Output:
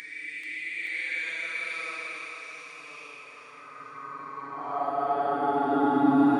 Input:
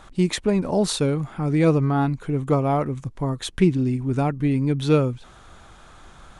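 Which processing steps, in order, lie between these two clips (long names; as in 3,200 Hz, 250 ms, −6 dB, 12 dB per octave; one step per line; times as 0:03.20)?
extreme stretch with random phases 13×, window 0.05 s, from 0:01.54
echo with a time of its own for lows and highs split 420 Hz, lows 113 ms, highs 435 ms, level −5 dB
high-pass filter sweep 2,200 Hz → 300 Hz, 0:03.20–0:06.12
level −7 dB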